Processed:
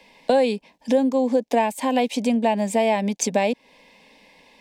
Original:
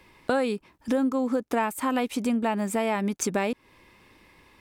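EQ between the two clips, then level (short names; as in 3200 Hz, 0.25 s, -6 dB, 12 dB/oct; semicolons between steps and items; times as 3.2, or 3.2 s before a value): three-band isolator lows -13 dB, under 230 Hz, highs -13 dB, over 7200 Hz; fixed phaser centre 350 Hz, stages 6; +9.0 dB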